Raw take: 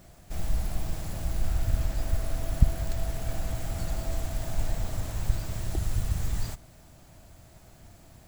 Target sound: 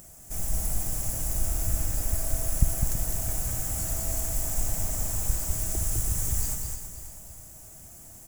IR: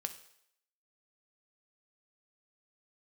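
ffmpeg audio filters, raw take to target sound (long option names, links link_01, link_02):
-filter_complex "[0:a]asplit=2[link_01][link_02];[link_02]aecho=0:1:327|654|981|1308:0.316|0.133|0.0558|0.0234[link_03];[link_01][link_03]amix=inputs=2:normalize=0,aexciter=amount=11.6:drive=3.6:freq=6000,asplit=2[link_04][link_05];[link_05]aecho=0:1:205:0.596[link_06];[link_04][link_06]amix=inputs=2:normalize=0,acompressor=mode=upward:threshold=-41dB:ratio=2.5,highshelf=frequency=9500:gain=-9.5,volume=-2.5dB"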